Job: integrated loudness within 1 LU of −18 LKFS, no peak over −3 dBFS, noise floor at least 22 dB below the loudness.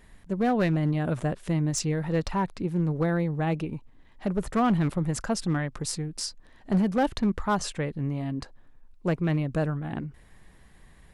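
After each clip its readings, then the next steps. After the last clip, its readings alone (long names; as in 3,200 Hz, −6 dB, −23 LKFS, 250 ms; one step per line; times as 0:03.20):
share of clipped samples 1.0%; peaks flattened at −18.0 dBFS; integrated loudness −28.0 LKFS; sample peak −18.0 dBFS; target loudness −18.0 LKFS
→ clipped peaks rebuilt −18 dBFS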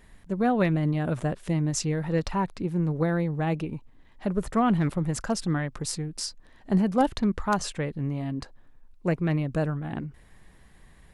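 share of clipped samples 0.0%; integrated loudness −27.5 LKFS; sample peak −9.0 dBFS; target loudness −18.0 LKFS
→ level +9.5 dB
brickwall limiter −3 dBFS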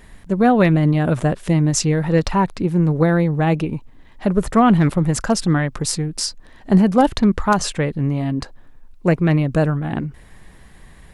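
integrated loudness −18.5 LKFS; sample peak −3.0 dBFS; background noise floor −45 dBFS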